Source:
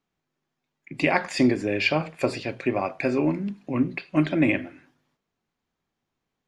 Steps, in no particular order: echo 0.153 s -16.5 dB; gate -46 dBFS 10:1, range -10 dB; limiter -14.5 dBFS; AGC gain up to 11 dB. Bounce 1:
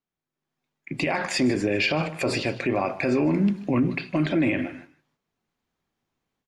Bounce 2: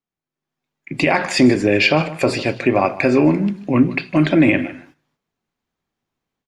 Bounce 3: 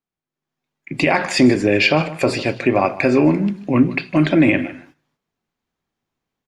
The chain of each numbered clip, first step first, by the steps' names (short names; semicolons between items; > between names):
AGC > limiter > gate > echo; limiter > AGC > echo > gate; limiter > echo > AGC > gate